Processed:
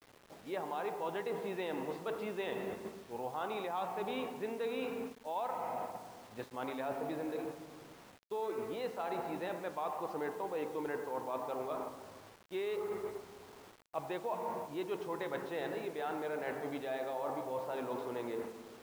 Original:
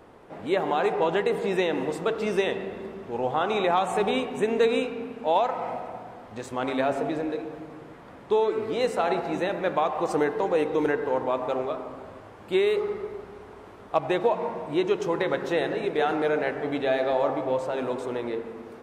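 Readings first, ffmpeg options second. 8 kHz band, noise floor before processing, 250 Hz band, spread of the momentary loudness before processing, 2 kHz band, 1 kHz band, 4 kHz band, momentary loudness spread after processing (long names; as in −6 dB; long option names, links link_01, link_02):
can't be measured, −46 dBFS, −13.0 dB, 15 LU, −13.5 dB, −11.5 dB, −14.0 dB, 8 LU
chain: -af "highpass=73,agate=range=-7dB:threshold=-35dB:ratio=16:detection=peak,lowpass=frequency=4600:width=0.5412,lowpass=frequency=4600:width=1.3066,adynamicequalizer=threshold=0.0112:dfrequency=940:dqfactor=2.4:tfrequency=940:tqfactor=2.4:attack=5:release=100:ratio=0.375:range=2.5:mode=boostabove:tftype=bell,areverse,acompressor=threshold=-33dB:ratio=5,areverse,acrusher=bits=8:mix=0:aa=0.000001,volume=-3.5dB"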